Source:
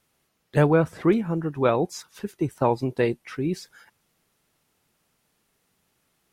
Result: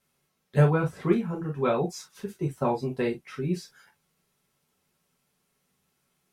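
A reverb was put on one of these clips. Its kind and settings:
reverb whose tail is shaped and stops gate 80 ms falling, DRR −1 dB
level −7.5 dB

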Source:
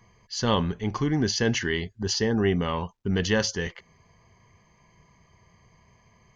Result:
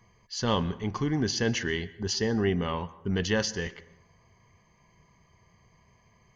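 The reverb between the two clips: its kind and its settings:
dense smooth reverb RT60 0.83 s, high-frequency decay 0.55×, pre-delay 105 ms, DRR 18 dB
level −3 dB

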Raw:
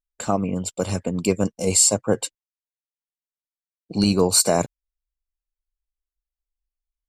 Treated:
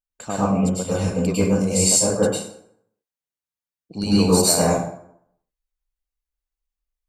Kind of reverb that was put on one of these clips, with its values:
dense smooth reverb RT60 0.68 s, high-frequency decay 0.65×, pre-delay 90 ms, DRR −8.5 dB
level −7 dB

